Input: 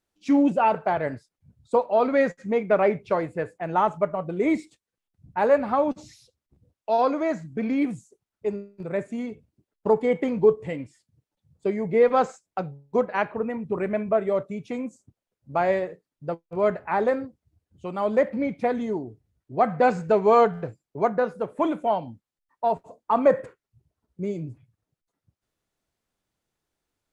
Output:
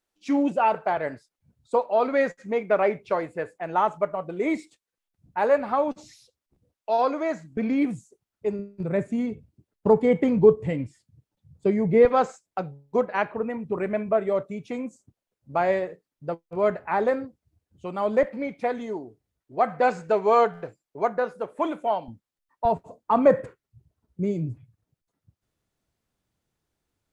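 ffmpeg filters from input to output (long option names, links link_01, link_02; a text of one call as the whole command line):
ffmpeg -i in.wav -af "asetnsamples=nb_out_samples=441:pad=0,asendcmd='7.57 equalizer g 1.5;8.59 equalizer g 9;12.05 equalizer g -2;18.23 equalizer g -11.5;22.08 equalizer g -0.5;22.65 equalizer g 6.5',equalizer=frequency=96:width_type=o:width=2.8:gain=-8.5" out.wav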